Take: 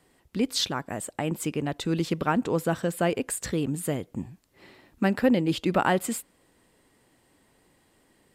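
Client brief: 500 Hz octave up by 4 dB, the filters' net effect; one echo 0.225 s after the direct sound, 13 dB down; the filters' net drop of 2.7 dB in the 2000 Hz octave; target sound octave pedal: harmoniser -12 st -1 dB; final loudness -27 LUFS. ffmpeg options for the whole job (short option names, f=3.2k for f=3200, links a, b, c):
-filter_complex "[0:a]equalizer=f=500:t=o:g=5,equalizer=f=2k:t=o:g=-4,aecho=1:1:225:0.224,asplit=2[a][b];[b]asetrate=22050,aresample=44100,atempo=2,volume=-1dB[c];[a][c]amix=inputs=2:normalize=0,volume=-3.5dB"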